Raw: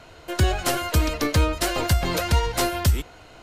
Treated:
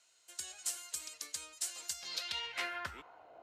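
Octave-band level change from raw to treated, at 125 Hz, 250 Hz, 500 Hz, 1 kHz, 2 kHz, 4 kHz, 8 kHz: below −40 dB, −33.5 dB, −27.5 dB, −20.5 dB, −14.0 dB, −12.0 dB, −8.5 dB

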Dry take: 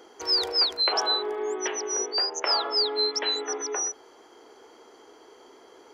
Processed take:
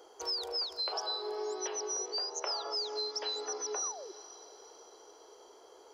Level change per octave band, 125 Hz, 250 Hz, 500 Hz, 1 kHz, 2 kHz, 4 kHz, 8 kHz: can't be measured, −11.5 dB, −8.5 dB, −9.0 dB, −14.5 dB, −11.0 dB, −6.5 dB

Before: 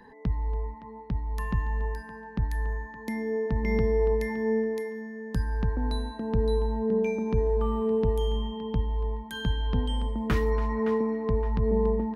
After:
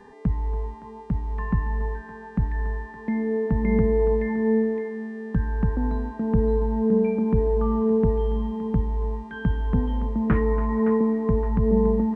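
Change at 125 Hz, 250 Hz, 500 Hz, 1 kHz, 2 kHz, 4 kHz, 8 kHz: +4.0 dB, +7.5 dB, +3.5 dB, +2.5 dB, +0.5 dB, below −10 dB, can't be measured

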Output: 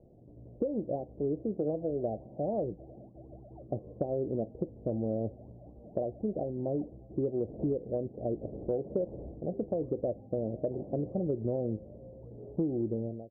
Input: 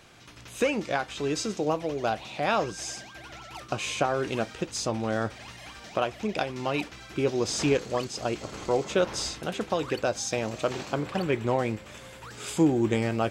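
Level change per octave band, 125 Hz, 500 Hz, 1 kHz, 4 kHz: −3.5 dB, −4.5 dB, −15.0 dB, below −40 dB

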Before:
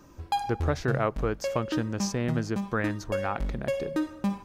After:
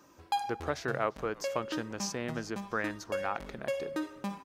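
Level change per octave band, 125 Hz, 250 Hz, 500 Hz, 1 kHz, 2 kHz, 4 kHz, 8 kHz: −13.5, −8.5, −4.5, −3.0, −2.5, −2.0, −2.0 decibels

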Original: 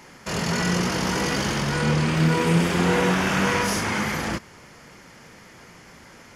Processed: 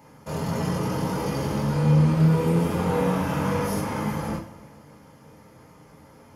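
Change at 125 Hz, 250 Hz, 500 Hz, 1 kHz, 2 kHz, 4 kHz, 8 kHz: +2.0, −0.5, −1.0, −3.5, −11.5, −11.5, −10.0 decibels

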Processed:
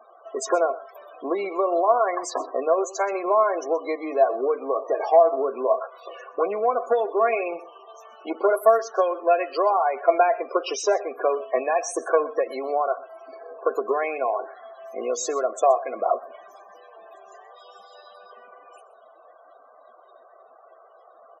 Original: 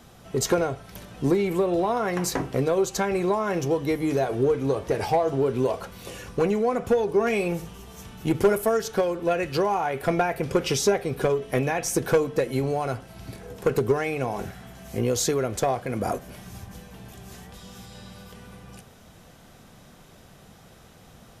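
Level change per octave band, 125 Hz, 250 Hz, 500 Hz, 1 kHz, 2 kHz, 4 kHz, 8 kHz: below −35 dB, −8.0 dB, +2.0 dB, +6.0 dB, −1.0 dB, −6.0 dB, −4.0 dB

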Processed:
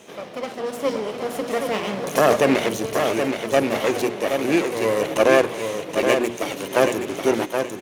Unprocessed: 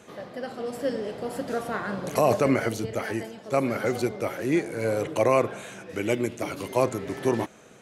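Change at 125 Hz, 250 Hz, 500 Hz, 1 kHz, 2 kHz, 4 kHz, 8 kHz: −1.5, +4.5, +6.0, +5.5, +8.0, +11.5, +8.0 decibels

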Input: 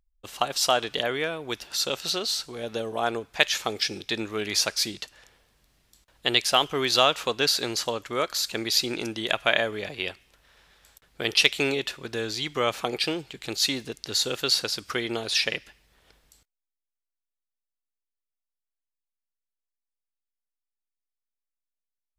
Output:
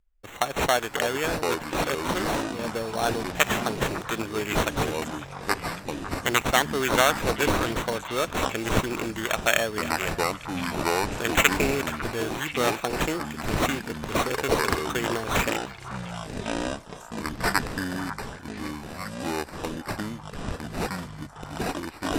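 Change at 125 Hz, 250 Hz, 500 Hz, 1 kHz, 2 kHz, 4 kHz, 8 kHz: +9.5, +6.0, +2.5, +4.5, +3.0, −6.0, −0.5 decibels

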